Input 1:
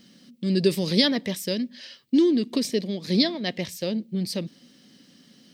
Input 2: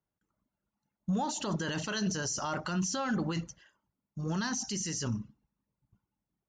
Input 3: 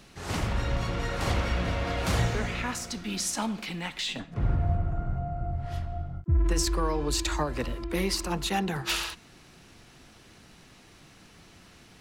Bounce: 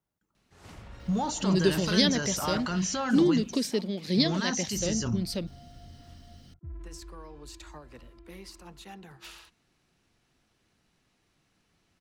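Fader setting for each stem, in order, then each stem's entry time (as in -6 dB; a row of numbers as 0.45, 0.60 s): -3.5, +2.5, -18.0 dB; 1.00, 0.00, 0.35 s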